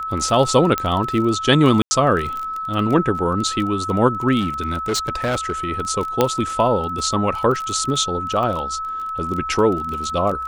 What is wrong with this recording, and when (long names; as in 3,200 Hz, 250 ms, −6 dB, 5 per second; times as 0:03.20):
surface crackle 21 per second −24 dBFS
whistle 1,300 Hz −24 dBFS
0:00.78: click −6 dBFS
0:01.82–0:01.91: drop-out 90 ms
0:04.40–0:05.52: clipping −16.5 dBFS
0:06.21: click −2 dBFS